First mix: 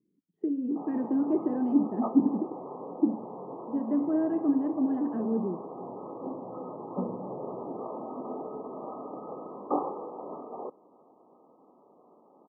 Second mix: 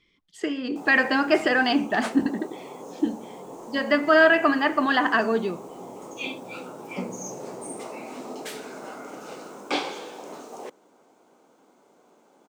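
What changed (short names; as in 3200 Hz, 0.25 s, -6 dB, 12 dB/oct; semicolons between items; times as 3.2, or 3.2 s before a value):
speech: remove Butterworth band-pass 240 Hz, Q 1.2; background: remove brick-wall FIR low-pass 1300 Hz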